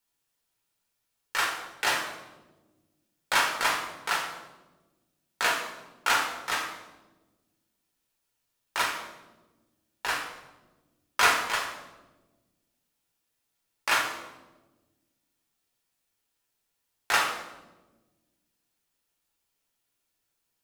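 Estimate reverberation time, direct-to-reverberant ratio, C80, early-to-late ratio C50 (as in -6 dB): 1.2 s, -1.0 dB, 8.0 dB, 5.5 dB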